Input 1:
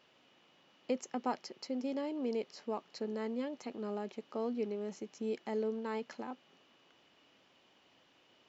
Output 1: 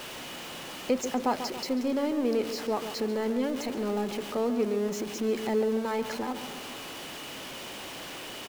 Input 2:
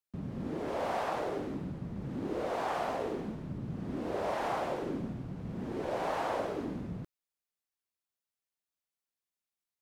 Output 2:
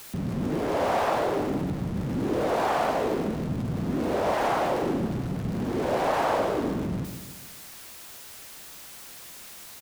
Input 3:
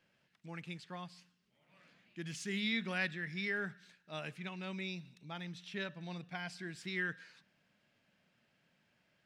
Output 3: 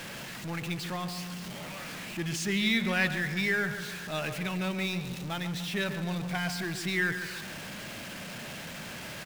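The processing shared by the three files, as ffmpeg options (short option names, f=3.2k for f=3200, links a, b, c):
-filter_complex "[0:a]aeval=exprs='val(0)+0.5*0.0075*sgn(val(0))':c=same,asplit=2[a][b];[b]adelay=141,lowpass=f=2.2k:p=1,volume=-9dB,asplit=2[c][d];[d]adelay=141,lowpass=f=2.2k:p=1,volume=0.51,asplit=2[e][f];[f]adelay=141,lowpass=f=2.2k:p=1,volume=0.51,asplit=2[g][h];[h]adelay=141,lowpass=f=2.2k:p=1,volume=0.51,asplit=2[i][j];[j]adelay=141,lowpass=f=2.2k:p=1,volume=0.51,asplit=2[k][l];[l]adelay=141,lowpass=f=2.2k:p=1,volume=0.51[m];[a][c][e][g][i][k][m]amix=inputs=7:normalize=0,volume=7dB"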